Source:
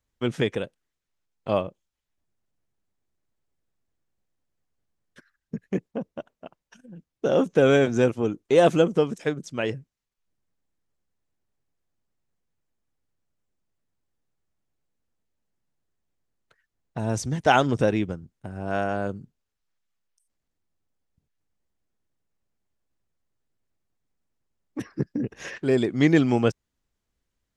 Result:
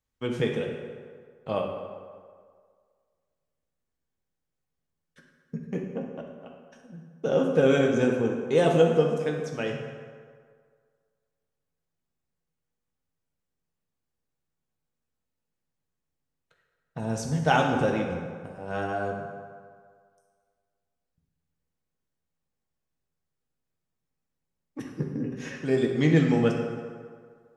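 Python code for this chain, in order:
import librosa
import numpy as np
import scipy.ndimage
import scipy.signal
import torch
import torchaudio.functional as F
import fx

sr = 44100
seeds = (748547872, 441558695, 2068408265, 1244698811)

y = fx.rev_fdn(x, sr, rt60_s=1.9, lf_ratio=0.8, hf_ratio=0.6, size_ms=37.0, drr_db=0.0)
y = y * librosa.db_to_amplitude(-5.5)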